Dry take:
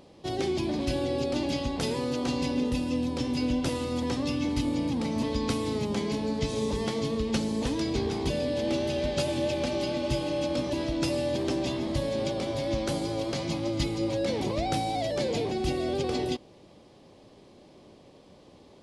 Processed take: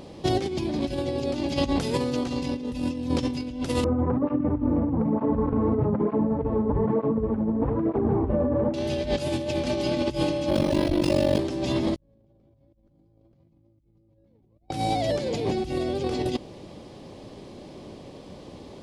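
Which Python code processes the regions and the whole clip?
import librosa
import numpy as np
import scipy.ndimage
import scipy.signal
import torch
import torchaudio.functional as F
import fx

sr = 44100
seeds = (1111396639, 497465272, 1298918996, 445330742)

y = fx.chain(x, sr, fx.self_delay(depth_ms=0.19),
    fx.lowpass(hz=1300.0, slope=24),
    fx.flanger_cancel(hz=1.1, depth_ms=7.8), at=(3.84, 8.74))
y = fx.chain(y, sr, fx.ring_mod(carrier_hz=24.0),
    fx.resample_linear(factor=3), at=(10.49, 11.39))
y = fx.chain(y, sr, fx.tilt_eq(slope=-4.5),
    fx.env_flatten(amount_pct=70), at=(11.97, 14.69))
y = fx.low_shelf(y, sr, hz=340.0, db=4.0)
y = fx.over_compress(y, sr, threshold_db=-30.0, ratio=-0.5)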